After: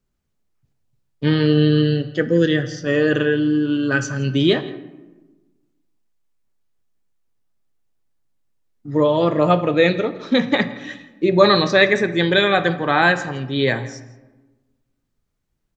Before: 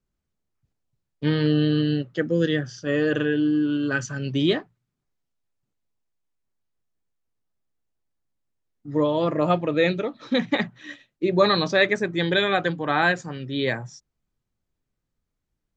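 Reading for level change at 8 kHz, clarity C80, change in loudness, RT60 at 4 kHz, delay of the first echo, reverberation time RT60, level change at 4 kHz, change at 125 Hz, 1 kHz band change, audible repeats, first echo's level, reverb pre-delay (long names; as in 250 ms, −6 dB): can't be measured, 14.5 dB, +5.5 dB, 0.60 s, 166 ms, 1.2 s, +5.0 dB, +5.5 dB, +5.5 dB, 1, −20.0 dB, 3 ms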